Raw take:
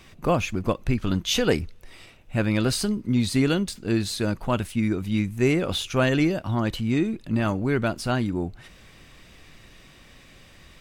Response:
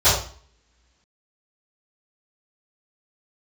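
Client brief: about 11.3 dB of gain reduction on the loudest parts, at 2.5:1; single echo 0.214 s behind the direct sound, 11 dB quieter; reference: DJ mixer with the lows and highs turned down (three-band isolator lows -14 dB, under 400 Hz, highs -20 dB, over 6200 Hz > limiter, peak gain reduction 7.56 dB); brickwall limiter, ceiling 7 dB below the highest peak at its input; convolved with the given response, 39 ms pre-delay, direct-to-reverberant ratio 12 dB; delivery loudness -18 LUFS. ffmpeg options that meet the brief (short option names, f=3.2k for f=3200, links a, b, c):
-filter_complex "[0:a]acompressor=threshold=-34dB:ratio=2.5,alimiter=level_in=2dB:limit=-24dB:level=0:latency=1,volume=-2dB,aecho=1:1:214:0.282,asplit=2[a][b];[1:a]atrim=start_sample=2205,adelay=39[c];[b][c]afir=irnorm=-1:irlink=0,volume=-33.5dB[d];[a][d]amix=inputs=2:normalize=0,acrossover=split=400 6200:gain=0.2 1 0.1[e][f][g];[e][f][g]amix=inputs=3:normalize=0,volume=26.5dB,alimiter=limit=-7dB:level=0:latency=1"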